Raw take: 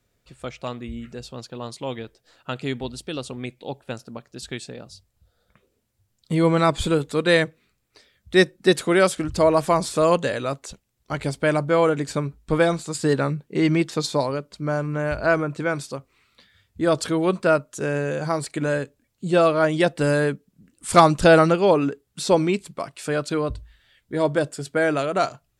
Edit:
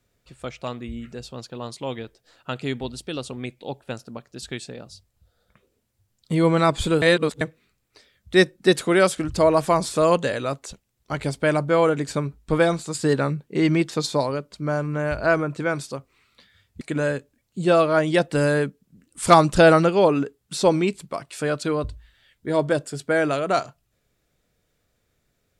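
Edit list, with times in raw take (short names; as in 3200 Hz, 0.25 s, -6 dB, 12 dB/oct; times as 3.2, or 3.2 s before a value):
7.02–7.41 reverse
16.81–18.47 cut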